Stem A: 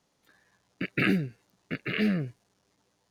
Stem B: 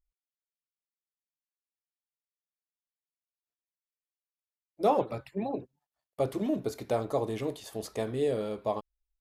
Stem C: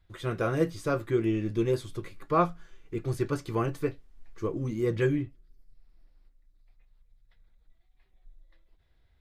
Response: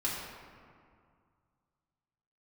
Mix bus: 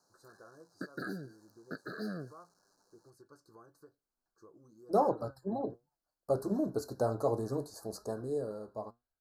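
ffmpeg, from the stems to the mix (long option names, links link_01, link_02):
-filter_complex "[0:a]volume=2dB[link_01];[1:a]dynaudnorm=framelen=360:gausssize=9:maxgain=13dB,flanger=delay=4.7:depth=4.5:regen=76:speed=0.63:shape=triangular,adelay=100,volume=-9dB[link_02];[2:a]acompressor=threshold=-33dB:ratio=6,volume=-15.5dB[link_03];[link_01][link_03]amix=inputs=2:normalize=0,highpass=frequency=570:poles=1,acompressor=threshold=-35dB:ratio=3,volume=0dB[link_04];[link_02][link_04]amix=inputs=2:normalize=0,asuperstop=centerf=2600:order=20:qfactor=1.1"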